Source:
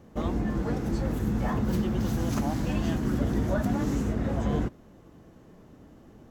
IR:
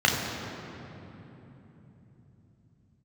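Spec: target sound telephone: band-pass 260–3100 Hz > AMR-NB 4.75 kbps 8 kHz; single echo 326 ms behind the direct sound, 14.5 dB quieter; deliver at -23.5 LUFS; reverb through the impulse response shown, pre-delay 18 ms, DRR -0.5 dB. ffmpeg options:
-filter_complex "[0:a]aecho=1:1:326:0.188,asplit=2[s0][s1];[1:a]atrim=start_sample=2205,adelay=18[s2];[s1][s2]afir=irnorm=-1:irlink=0,volume=0.141[s3];[s0][s3]amix=inputs=2:normalize=0,highpass=260,lowpass=3100,volume=2.37" -ar 8000 -c:a libopencore_amrnb -b:a 4750

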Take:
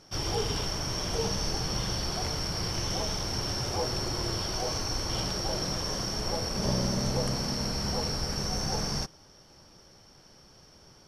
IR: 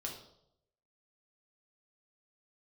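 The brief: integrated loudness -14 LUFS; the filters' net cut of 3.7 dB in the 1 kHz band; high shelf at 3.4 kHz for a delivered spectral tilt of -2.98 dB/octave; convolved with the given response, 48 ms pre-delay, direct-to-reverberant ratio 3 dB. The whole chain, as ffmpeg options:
-filter_complex "[0:a]equalizer=f=1000:t=o:g=-5.5,highshelf=f=3400:g=6,asplit=2[s0][s1];[1:a]atrim=start_sample=2205,adelay=48[s2];[s1][s2]afir=irnorm=-1:irlink=0,volume=0.794[s3];[s0][s3]amix=inputs=2:normalize=0,volume=3.76"

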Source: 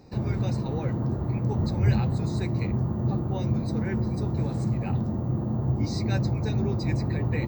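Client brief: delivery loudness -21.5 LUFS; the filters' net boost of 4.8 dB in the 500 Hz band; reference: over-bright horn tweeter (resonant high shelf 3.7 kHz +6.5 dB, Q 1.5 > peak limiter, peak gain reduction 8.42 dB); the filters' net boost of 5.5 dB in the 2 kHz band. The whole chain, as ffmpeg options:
-af "equalizer=f=500:t=o:g=6,equalizer=f=2000:t=o:g=8,highshelf=f=3700:t=q:w=1.5:g=6.5,volume=2,alimiter=limit=0.237:level=0:latency=1"

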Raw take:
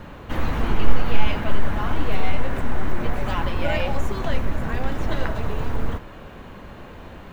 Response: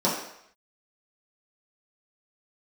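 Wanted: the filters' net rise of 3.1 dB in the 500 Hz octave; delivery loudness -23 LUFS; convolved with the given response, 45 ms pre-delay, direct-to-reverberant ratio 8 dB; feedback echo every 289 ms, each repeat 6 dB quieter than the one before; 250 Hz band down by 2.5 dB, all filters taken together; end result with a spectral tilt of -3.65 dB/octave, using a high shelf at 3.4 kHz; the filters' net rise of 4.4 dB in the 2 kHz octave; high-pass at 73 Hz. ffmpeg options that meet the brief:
-filter_complex "[0:a]highpass=73,equalizer=f=250:t=o:g=-4.5,equalizer=f=500:t=o:g=4.5,equalizer=f=2000:t=o:g=3.5,highshelf=f=3400:g=6.5,aecho=1:1:289|578|867|1156|1445|1734:0.501|0.251|0.125|0.0626|0.0313|0.0157,asplit=2[s0][s1];[1:a]atrim=start_sample=2205,adelay=45[s2];[s1][s2]afir=irnorm=-1:irlink=0,volume=0.075[s3];[s0][s3]amix=inputs=2:normalize=0,volume=1.19"

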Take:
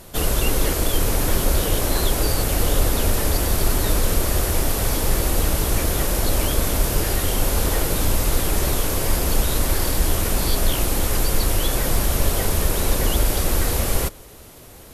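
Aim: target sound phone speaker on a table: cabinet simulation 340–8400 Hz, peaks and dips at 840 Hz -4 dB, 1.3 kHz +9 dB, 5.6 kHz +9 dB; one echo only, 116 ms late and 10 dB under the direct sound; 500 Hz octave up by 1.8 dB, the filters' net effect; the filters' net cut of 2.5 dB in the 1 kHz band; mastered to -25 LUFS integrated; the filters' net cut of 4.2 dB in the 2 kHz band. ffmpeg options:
-af "highpass=f=340:w=0.5412,highpass=f=340:w=1.3066,equalizer=f=840:t=q:w=4:g=-4,equalizer=f=1300:t=q:w=4:g=9,equalizer=f=5600:t=q:w=4:g=9,lowpass=f=8400:w=0.5412,lowpass=f=8400:w=1.3066,equalizer=f=500:t=o:g=4.5,equalizer=f=1000:t=o:g=-5.5,equalizer=f=2000:t=o:g=-6.5,aecho=1:1:116:0.316,volume=0.944"

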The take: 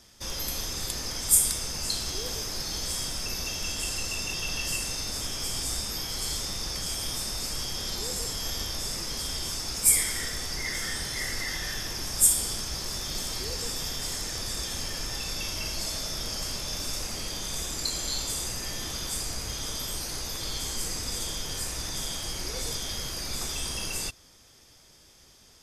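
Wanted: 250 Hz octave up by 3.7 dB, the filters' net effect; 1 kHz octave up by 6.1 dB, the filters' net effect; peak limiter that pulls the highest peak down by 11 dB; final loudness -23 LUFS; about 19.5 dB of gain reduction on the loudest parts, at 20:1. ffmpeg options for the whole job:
-af "equalizer=f=250:t=o:g=4.5,equalizer=f=1000:t=o:g=7.5,acompressor=threshold=0.02:ratio=20,volume=6.31,alimiter=limit=0.178:level=0:latency=1"

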